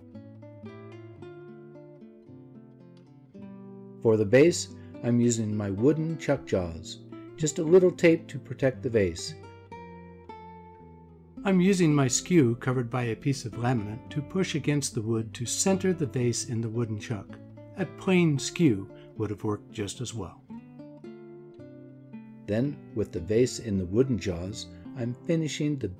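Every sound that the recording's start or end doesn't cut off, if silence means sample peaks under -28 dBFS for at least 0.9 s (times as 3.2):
4.05–9.28
11.46–20.26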